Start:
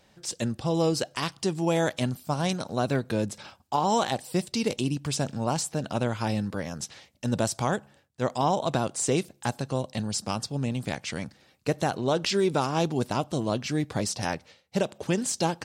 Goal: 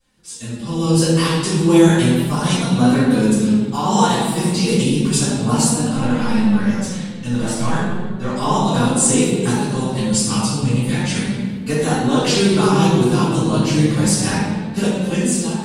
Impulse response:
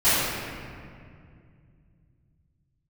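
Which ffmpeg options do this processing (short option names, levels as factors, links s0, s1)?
-filter_complex "[0:a]dynaudnorm=f=150:g=9:m=5.31,asettb=1/sr,asplit=3[s0][s1][s2];[s0]atrim=end=5.944[s3];[s1]atrim=start=5.94:end=8.37,asetpts=PTS-STARTPTS,afade=t=in:d=0.004:c=qsin,afade=t=out:st=2.426:d=0.004:c=qsin,asplit=2[s4][s5];[s5]highpass=f=720:p=1,volume=2.51,asoftclip=type=tanh:threshold=0.224[s6];[s4][s6]amix=inputs=2:normalize=0,lowpass=f=2600:p=1,volume=0.501[s7];[s2]atrim=start=8.366[s8];[s3][s7]acrossfade=d=0.004:c1=hsin:c2=qsin[s9];[s9][s8]acrossfade=d=0.004:c1=qsin:c2=hsin,lowshelf=f=110:g=9.5[s10];[1:a]atrim=start_sample=2205,asetrate=70560,aresample=44100[s11];[s10][s11]afir=irnorm=-1:irlink=0,flanger=delay=3.7:depth=2.8:regen=50:speed=0.33:shape=triangular,equalizer=f=100:t=o:w=0.67:g=-11,equalizer=f=630:t=o:w=0.67:g=-8,equalizer=f=10000:t=o:w=0.67:g=12,volume=0.224"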